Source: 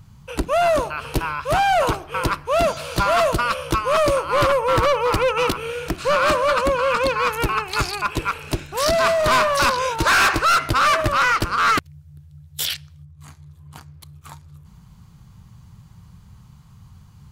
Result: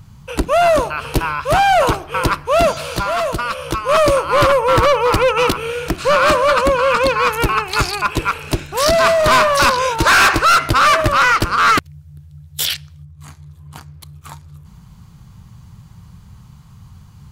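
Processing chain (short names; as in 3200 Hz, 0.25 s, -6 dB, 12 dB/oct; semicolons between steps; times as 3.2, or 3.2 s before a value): 2.88–3.89 compressor 2:1, threshold -27 dBFS, peak gain reduction 6.5 dB; gain +5 dB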